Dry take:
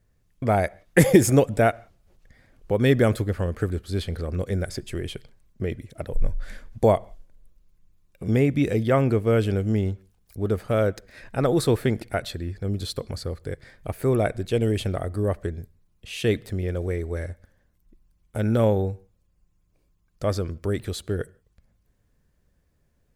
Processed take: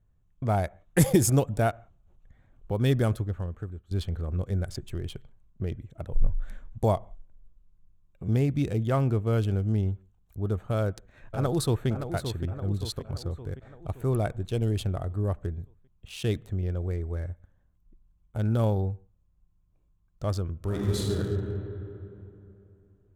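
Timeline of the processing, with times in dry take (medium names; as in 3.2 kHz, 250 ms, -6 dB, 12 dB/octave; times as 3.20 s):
2.96–3.91 s: fade out, to -15 dB
10.76–11.88 s: echo throw 570 ms, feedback 55%, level -8 dB
20.56–21.16 s: reverb throw, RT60 3 s, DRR -5.5 dB
whole clip: local Wiener filter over 9 samples; graphic EQ 250/500/2000 Hz -5/-8/-11 dB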